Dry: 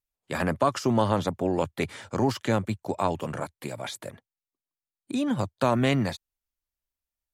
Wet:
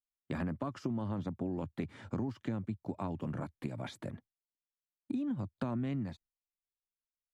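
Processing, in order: LPF 1800 Hz 6 dB/oct; resonant low shelf 360 Hz +7 dB, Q 1.5; gate with hold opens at -44 dBFS; compressor 6:1, threshold -30 dBFS, peak gain reduction 15.5 dB; gain -4 dB

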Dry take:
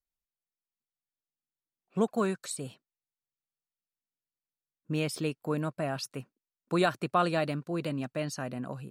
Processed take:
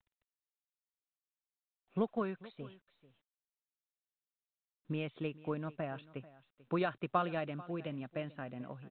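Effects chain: transient shaper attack +5 dB, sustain 0 dB; echo 0.44 s -19.5 dB; gain -9 dB; µ-law 64 kbps 8000 Hz

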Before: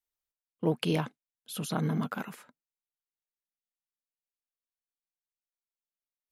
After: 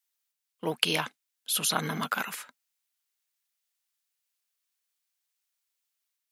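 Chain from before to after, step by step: HPF 120 Hz; tilt shelf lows -10 dB, about 760 Hz; AGC gain up to 4 dB

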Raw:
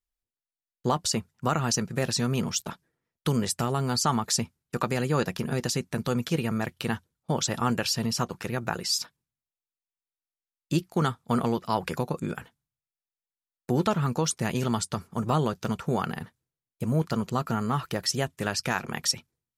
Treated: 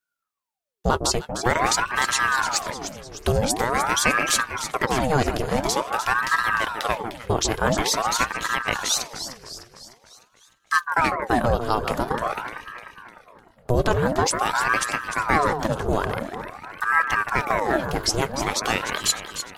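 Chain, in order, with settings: echo with dull and thin repeats by turns 0.151 s, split 1300 Hz, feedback 72%, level -7 dB; ring modulator with a swept carrier 840 Hz, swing 75%, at 0.47 Hz; gain +7 dB

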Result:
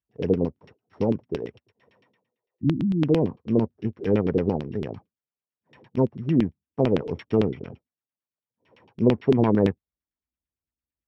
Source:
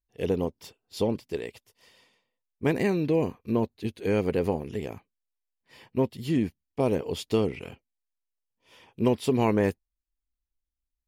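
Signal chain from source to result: sample sorter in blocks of 8 samples; HPF 64 Hz 24 dB/oct; bell 150 Hz +8 dB 2.1 oct; treble ducked by the level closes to 2600 Hz, closed at -15.5 dBFS; spectral repair 2.37–3, 360–9400 Hz before; LFO low-pass saw down 8.9 Hz 290–3300 Hz; gain -2.5 dB

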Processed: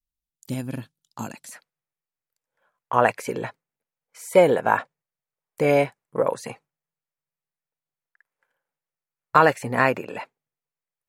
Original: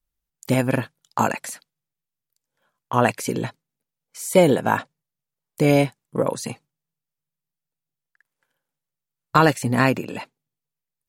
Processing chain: band shelf 1000 Hz -8 dB 2.9 oct, from 1.5 s +9 dB; gain -8 dB

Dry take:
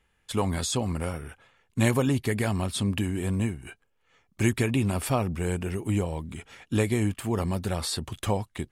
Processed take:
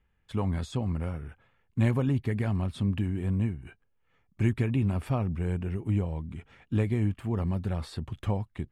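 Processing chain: tone controls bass +8 dB, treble -14 dB; gain -7 dB

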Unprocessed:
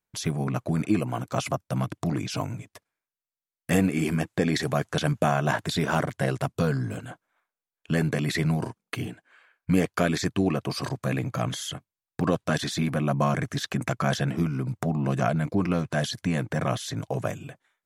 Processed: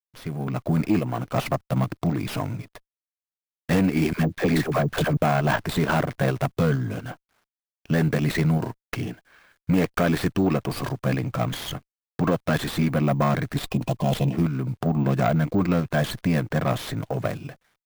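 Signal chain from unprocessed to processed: opening faded in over 0.65 s; in parallel at 0 dB: level quantiser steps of 13 dB; 4.13–5.17 on the sum: dispersion lows, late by 67 ms, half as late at 570 Hz; soft clip -11.5 dBFS, distortion -17 dB; 13.57–14.33 brick-wall FIR band-stop 1100–2400 Hz; careless resampling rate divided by 2×, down none, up hold; bit-crush 11-bit; running maximum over 5 samples

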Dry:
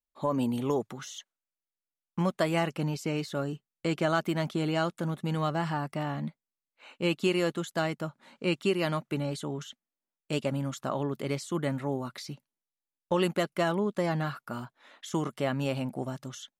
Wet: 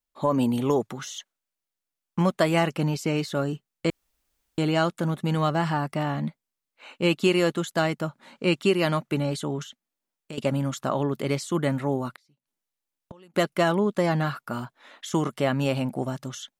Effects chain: 3.9–4.58 room tone; 9.63–10.38 compressor 2.5:1, threshold -48 dBFS, peak gain reduction 15 dB; 12.11–13.34 flipped gate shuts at -33 dBFS, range -31 dB; gain +5.5 dB

